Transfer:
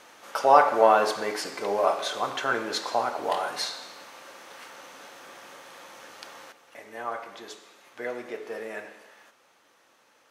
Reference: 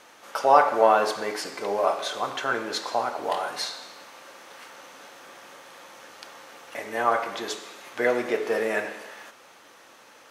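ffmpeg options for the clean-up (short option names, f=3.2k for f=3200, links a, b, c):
-af "asetnsamples=n=441:p=0,asendcmd='6.52 volume volume 10.5dB',volume=0dB"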